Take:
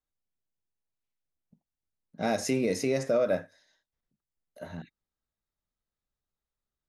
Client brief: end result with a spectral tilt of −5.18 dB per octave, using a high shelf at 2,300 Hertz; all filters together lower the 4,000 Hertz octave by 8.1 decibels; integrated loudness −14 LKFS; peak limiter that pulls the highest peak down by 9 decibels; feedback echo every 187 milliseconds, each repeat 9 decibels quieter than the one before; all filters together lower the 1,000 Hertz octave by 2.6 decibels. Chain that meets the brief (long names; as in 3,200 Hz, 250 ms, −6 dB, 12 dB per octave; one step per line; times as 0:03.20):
parametric band 1,000 Hz −3 dB
high-shelf EQ 2,300 Hz −6.5 dB
parametric band 4,000 Hz −4 dB
brickwall limiter −26.5 dBFS
repeating echo 187 ms, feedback 35%, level −9 dB
level +23 dB